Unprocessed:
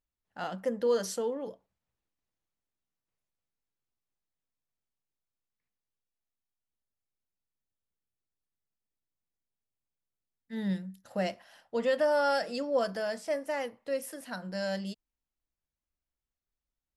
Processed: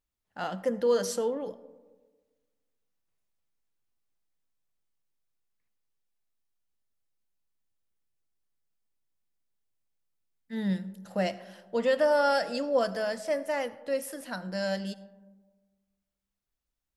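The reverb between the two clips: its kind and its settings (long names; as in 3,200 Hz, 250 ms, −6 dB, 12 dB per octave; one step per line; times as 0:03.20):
comb and all-pass reverb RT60 1.4 s, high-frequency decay 0.3×, pre-delay 35 ms, DRR 17 dB
level +2.5 dB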